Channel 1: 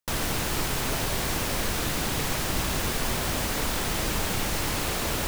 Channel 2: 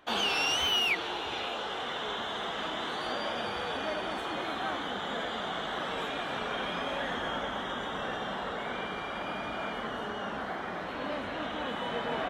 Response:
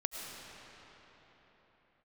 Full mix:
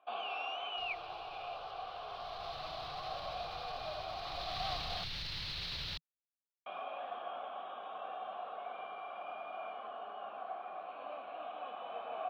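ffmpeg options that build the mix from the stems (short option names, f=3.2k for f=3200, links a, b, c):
-filter_complex "[0:a]firequalizer=gain_entry='entry(160,0);entry(230,-15);entry(4100,10);entry(7200,-25)':delay=0.05:min_phase=1,alimiter=level_in=5.5dB:limit=-24dB:level=0:latency=1:release=106,volume=-5.5dB,adelay=700,volume=-1.5dB,afade=t=in:st=2.06:d=0.52:silence=0.316228,afade=t=in:st=4.18:d=0.48:silence=0.375837[a];[1:a]asplit=3[b][c][d];[b]bandpass=f=730:t=q:w=8,volume=0dB[e];[c]bandpass=f=1.09k:t=q:w=8,volume=-6dB[f];[d]bandpass=f=2.44k:t=q:w=8,volume=-9dB[g];[e][f][g]amix=inputs=3:normalize=0,lowpass=f=4.5k:w=0.5412,lowpass=f=4.5k:w=1.3066,volume=0.5dB,asplit=3[h][i][j];[h]atrim=end=5.04,asetpts=PTS-STARTPTS,afade=t=out:st=5.036:d=0.004:c=hsin[k];[i]atrim=start=5.04:end=6.66,asetpts=PTS-STARTPTS,volume=0[l];[j]atrim=start=6.66,asetpts=PTS-STARTPTS,afade=t=in:d=0.004:c=hsin[m];[k][l][m]concat=n=3:v=0:a=1[n];[a][n]amix=inputs=2:normalize=0,lowshelf=f=370:g=-3.5"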